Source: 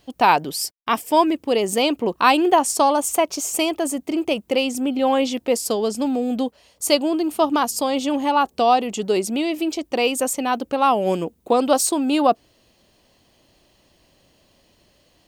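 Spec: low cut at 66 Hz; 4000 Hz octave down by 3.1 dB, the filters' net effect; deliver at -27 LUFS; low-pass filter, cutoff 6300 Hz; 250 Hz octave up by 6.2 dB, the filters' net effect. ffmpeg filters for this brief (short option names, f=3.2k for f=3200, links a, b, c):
-af "highpass=66,lowpass=6.3k,equalizer=f=250:t=o:g=7.5,equalizer=f=4k:t=o:g=-4,volume=-9dB"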